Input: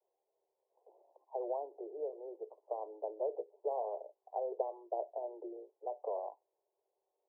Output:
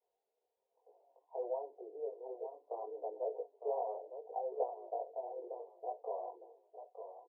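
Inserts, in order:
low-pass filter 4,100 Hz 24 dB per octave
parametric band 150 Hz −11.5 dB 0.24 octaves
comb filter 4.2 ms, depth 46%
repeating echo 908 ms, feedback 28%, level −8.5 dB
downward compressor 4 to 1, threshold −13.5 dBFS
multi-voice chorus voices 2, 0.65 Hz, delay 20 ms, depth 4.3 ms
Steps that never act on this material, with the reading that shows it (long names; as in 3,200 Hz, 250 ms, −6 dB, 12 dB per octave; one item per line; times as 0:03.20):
low-pass filter 4,100 Hz: nothing at its input above 1,100 Hz
parametric band 150 Hz: nothing at its input below 300 Hz
downward compressor, threshold −13.5 dBFS: peak of its input −20.0 dBFS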